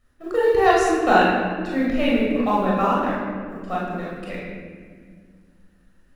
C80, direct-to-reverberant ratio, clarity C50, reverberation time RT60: 1.5 dB, −6.0 dB, −0.5 dB, 1.8 s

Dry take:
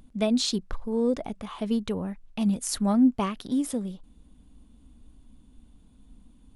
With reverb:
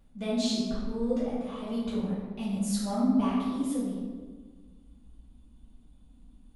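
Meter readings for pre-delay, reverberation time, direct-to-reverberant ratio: 3 ms, 1.5 s, −11.0 dB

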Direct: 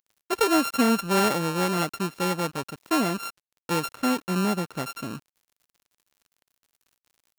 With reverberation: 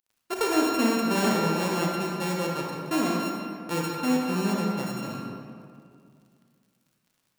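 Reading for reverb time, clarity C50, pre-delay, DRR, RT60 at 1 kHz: 2.3 s, −0.5 dB, 30 ms, −2.0 dB, 2.2 s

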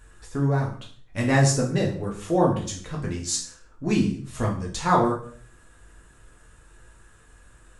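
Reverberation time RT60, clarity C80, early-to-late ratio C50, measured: 0.50 s, 12.5 dB, 8.0 dB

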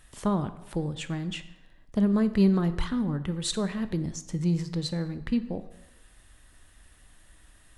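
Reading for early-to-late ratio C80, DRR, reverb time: 15.5 dB, 11.0 dB, 0.95 s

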